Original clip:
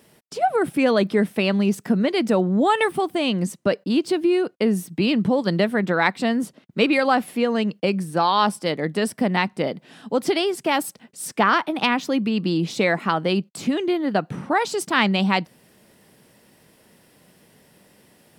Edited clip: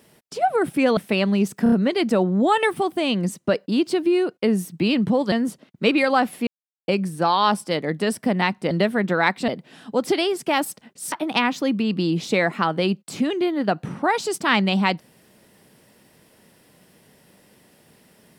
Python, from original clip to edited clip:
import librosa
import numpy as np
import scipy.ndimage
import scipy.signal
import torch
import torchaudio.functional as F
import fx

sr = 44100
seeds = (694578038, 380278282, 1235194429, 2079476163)

y = fx.edit(x, sr, fx.cut(start_s=0.97, length_s=0.27),
    fx.stutter(start_s=1.9, slice_s=0.03, count=4),
    fx.move(start_s=5.5, length_s=0.77, to_s=9.66),
    fx.silence(start_s=7.42, length_s=0.41),
    fx.cut(start_s=11.3, length_s=0.29), tone=tone)